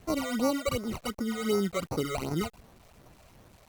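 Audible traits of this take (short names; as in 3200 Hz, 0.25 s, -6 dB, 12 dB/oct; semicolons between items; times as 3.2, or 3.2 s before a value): aliases and images of a low sample rate 1700 Hz, jitter 0%; phasing stages 12, 2.7 Hz, lowest notch 270–3200 Hz; a quantiser's noise floor 10-bit, dither none; Opus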